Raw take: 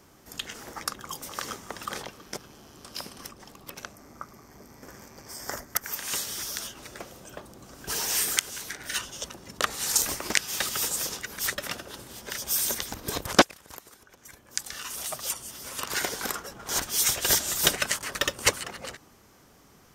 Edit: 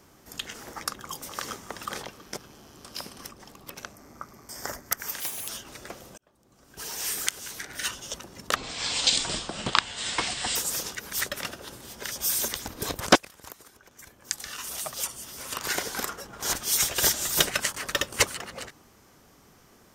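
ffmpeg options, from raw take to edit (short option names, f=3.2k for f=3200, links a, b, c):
-filter_complex "[0:a]asplit=7[a][b][c][d][e][f][g];[a]atrim=end=4.492[h];[b]atrim=start=5.328:end=6.044[i];[c]atrim=start=6.04:end=6.59,asetpts=PTS-STARTPTS,asetrate=84672,aresample=44100[j];[d]atrim=start=6.586:end=7.28,asetpts=PTS-STARTPTS,afade=t=out:st=0.69:d=0.004:c=hsin[k];[e]atrim=start=7.28:end=9.664,asetpts=PTS-STARTPTS,afade=t=in:d=1.52[l];[f]atrim=start=9.66:end=10.82,asetpts=PTS-STARTPTS,asetrate=25578,aresample=44100[m];[g]atrim=start=10.816[n];[h][i]acrossfade=d=0.004:c1=hsin:c2=hsin[o];[o][j]acrossfade=d=0.004:c1=hsin:c2=hsin[p];[k][l]concat=n=2:v=0:a=1[q];[p][q]acrossfade=d=0.004:c1=hsin:c2=hsin[r];[r][m]acrossfade=d=0.004:c1=hsin:c2=hsin[s];[s][n]acrossfade=d=0.004:c1=hsin:c2=hsin"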